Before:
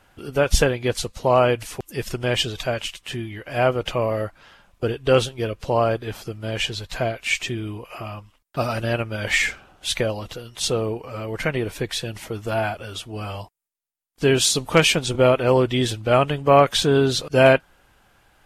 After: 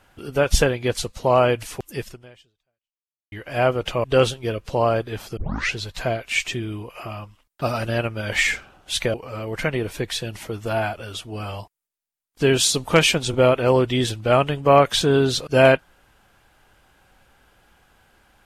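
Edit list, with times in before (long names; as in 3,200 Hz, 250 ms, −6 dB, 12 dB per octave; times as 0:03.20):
0:01.97–0:03.32: fade out exponential
0:04.04–0:04.99: remove
0:06.32: tape start 0.38 s
0:10.09–0:10.95: remove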